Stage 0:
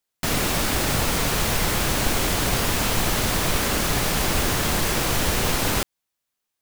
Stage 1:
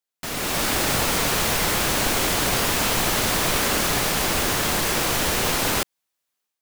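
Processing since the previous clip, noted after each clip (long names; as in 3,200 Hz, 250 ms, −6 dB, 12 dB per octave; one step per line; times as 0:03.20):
low-shelf EQ 170 Hz −8.5 dB
automatic gain control gain up to 10 dB
level −6.5 dB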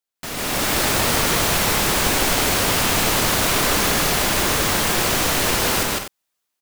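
loudspeakers that aren't time-aligned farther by 53 metres −1 dB, 70 metres −10 dB, 85 metres −10 dB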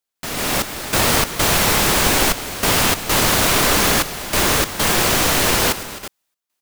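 gate pattern "xxxx..xx.xx" 97 BPM −12 dB
level +3 dB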